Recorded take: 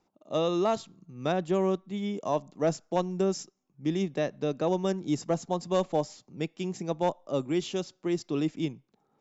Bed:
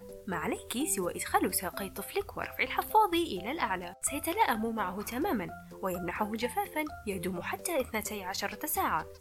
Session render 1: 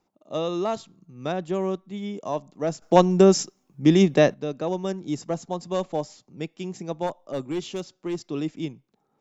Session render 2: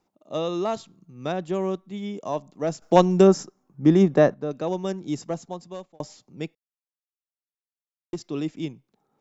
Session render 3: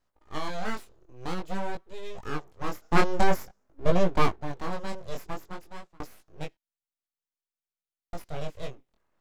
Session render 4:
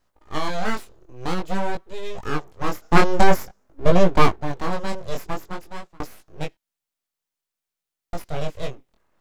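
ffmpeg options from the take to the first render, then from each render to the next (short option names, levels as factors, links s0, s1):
-filter_complex "[0:a]asplit=3[s0][s1][s2];[s0]afade=t=out:st=7.06:d=0.02[s3];[s1]aeval=exprs='clip(val(0),-1,0.0668)':c=same,afade=t=in:st=7.06:d=0.02,afade=t=out:st=8.28:d=0.02[s4];[s2]afade=t=in:st=8.28:d=0.02[s5];[s3][s4][s5]amix=inputs=3:normalize=0,asplit=3[s6][s7][s8];[s6]atrim=end=2.822[s9];[s7]atrim=start=2.818:end=4.342,asetpts=PTS-STARTPTS,volume=3.98[s10];[s8]atrim=start=4.338[s11];[s9][s10]acrossfade=d=0.004:c1=hsin:c2=hsin[s12];[s12][s11]acrossfade=d=0.004:c1=hsin:c2=hsin"
-filter_complex "[0:a]asettb=1/sr,asplit=3[s0][s1][s2];[s0]atrim=end=3.274[s3];[s1]atrim=start=3.27:end=4.51,asetpts=PTS-STARTPTS,afade=t=in:d=0.004:c=qsin,afade=t=out:st=1.236:d=0.004:c=qsin,highshelf=f=1900:t=q:w=1.5:g=-8[s4];[s2]atrim=start=4.506[s5];[s3][s4]acrossfade=d=0.004:c1=hsin:c2=qsin[s6];[s6][s5]acrossfade=d=0.004:c1=qsin:c2=hsin,asplit=4[s7][s8][s9][s10];[s7]atrim=end=6,asetpts=PTS-STARTPTS,afade=t=out:st=5.19:d=0.81[s11];[s8]atrim=start=6:end=6.55,asetpts=PTS-STARTPTS,afade=t=in:d=0.004:c=hsin,afade=t=out:st=0.546:d=0.004:c=hsin[s12];[s9]atrim=start=6.55:end=8.13,asetpts=PTS-STARTPTS,volume=0[s13];[s10]atrim=start=8.13,asetpts=PTS-STARTPTS,afade=t=in:d=0.004:c=hsin[s14];[s11][s12][s13][s14]concat=n=4:v=0:a=1"
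-af "aeval=exprs='abs(val(0))':c=same,flanger=delay=17:depth=7.5:speed=0.5"
-af "volume=2.37,alimiter=limit=0.891:level=0:latency=1"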